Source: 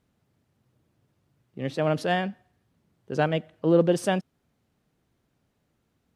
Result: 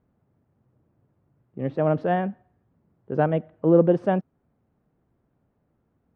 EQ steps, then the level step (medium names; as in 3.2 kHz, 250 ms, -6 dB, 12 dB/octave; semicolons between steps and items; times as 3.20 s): low-pass 1.2 kHz 12 dB/octave; +3.0 dB